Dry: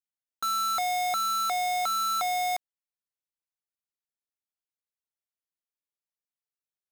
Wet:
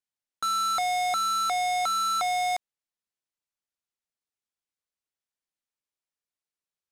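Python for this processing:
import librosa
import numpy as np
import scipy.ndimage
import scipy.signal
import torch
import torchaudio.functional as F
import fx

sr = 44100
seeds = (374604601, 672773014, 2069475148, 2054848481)

y = scipy.signal.sosfilt(scipy.signal.butter(2, 10000.0, 'lowpass', fs=sr, output='sos'), x)
y = F.gain(torch.from_numpy(y), 1.5).numpy()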